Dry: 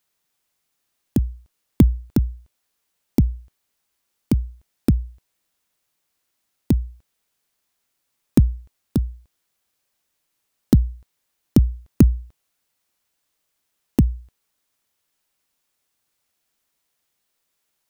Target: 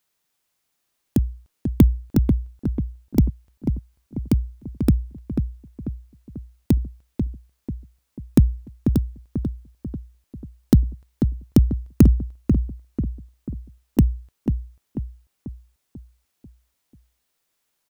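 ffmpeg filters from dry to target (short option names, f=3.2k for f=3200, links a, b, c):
-filter_complex "[0:a]asplit=2[a][b];[b]adelay=491,lowpass=f=1.4k:p=1,volume=-6dB,asplit=2[c][d];[d]adelay=491,lowpass=f=1.4k:p=1,volume=0.49,asplit=2[e][f];[f]adelay=491,lowpass=f=1.4k:p=1,volume=0.49,asplit=2[g][h];[h]adelay=491,lowpass=f=1.4k:p=1,volume=0.49,asplit=2[i][j];[j]adelay=491,lowpass=f=1.4k:p=1,volume=0.49,asplit=2[k][l];[l]adelay=491,lowpass=f=1.4k:p=1,volume=0.49[m];[a][c][e][g][i][k][m]amix=inputs=7:normalize=0"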